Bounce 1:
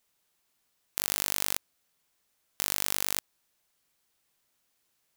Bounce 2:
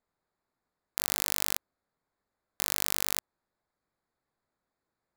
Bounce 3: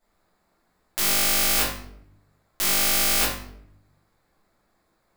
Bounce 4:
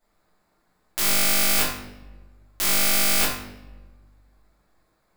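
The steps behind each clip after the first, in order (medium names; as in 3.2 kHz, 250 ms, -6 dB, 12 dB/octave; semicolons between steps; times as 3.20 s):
local Wiener filter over 15 samples
simulated room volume 130 m³, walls mixed, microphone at 2.9 m; loudness maximiser +7 dB; trim -1 dB
simulated room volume 960 m³, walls mixed, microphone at 0.47 m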